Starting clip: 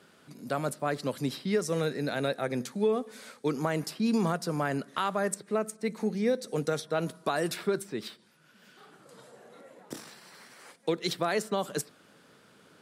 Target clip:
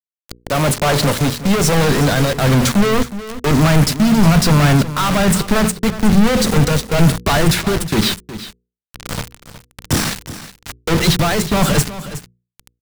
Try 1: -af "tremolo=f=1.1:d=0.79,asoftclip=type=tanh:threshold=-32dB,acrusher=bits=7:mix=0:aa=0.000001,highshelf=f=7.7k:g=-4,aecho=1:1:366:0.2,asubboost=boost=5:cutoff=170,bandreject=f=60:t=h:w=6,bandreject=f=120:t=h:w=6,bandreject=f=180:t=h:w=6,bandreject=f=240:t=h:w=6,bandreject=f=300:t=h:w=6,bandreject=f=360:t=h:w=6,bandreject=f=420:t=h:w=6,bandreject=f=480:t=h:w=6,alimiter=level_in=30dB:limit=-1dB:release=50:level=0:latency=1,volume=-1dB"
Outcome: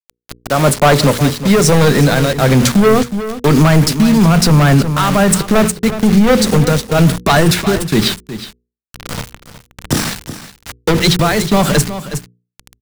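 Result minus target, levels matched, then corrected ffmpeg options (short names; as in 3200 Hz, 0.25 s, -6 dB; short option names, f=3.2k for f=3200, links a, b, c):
soft clip: distortion -5 dB
-af "tremolo=f=1.1:d=0.79,asoftclip=type=tanh:threshold=-40.5dB,acrusher=bits=7:mix=0:aa=0.000001,highshelf=f=7.7k:g=-4,aecho=1:1:366:0.2,asubboost=boost=5:cutoff=170,bandreject=f=60:t=h:w=6,bandreject=f=120:t=h:w=6,bandreject=f=180:t=h:w=6,bandreject=f=240:t=h:w=6,bandreject=f=300:t=h:w=6,bandreject=f=360:t=h:w=6,bandreject=f=420:t=h:w=6,bandreject=f=480:t=h:w=6,alimiter=level_in=30dB:limit=-1dB:release=50:level=0:latency=1,volume=-1dB"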